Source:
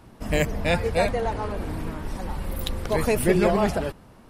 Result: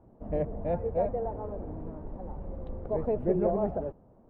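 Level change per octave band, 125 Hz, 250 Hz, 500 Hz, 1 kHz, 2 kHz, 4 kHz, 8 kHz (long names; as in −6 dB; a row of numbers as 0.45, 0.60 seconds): −8.5 dB, −8.0 dB, −5.5 dB, −9.0 dB, below −25 dB, below −35 dB, below −40 dB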